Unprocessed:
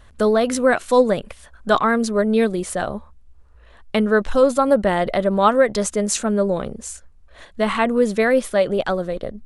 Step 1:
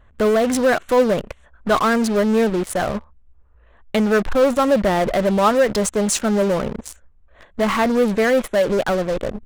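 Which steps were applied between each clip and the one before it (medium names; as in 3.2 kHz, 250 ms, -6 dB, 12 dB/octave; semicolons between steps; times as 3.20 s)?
local Wiener filter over 9 samples; in parallel at -6 dB: fuzz box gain 33 dB, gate -35 dBFS; on the sum: trim -3.5 dB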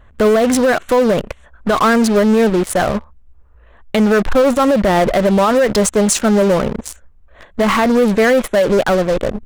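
peak limiter -12 dBFS, peak gain reduction 7 dB; trim +6 dB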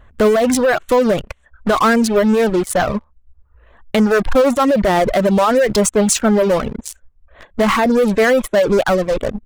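reverb removal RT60 0.74 s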